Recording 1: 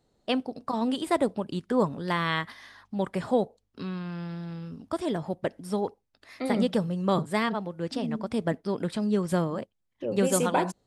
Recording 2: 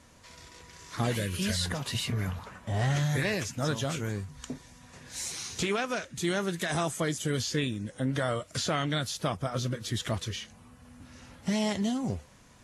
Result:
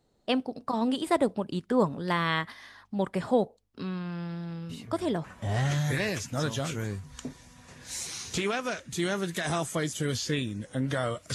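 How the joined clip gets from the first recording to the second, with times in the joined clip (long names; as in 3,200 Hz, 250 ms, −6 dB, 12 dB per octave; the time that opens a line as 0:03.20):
recording 1
0:04.69: mix in recording 2 from 0:01.94 0.55 s −15 dB
0:05.24: continue with recording 2 from 0:02.49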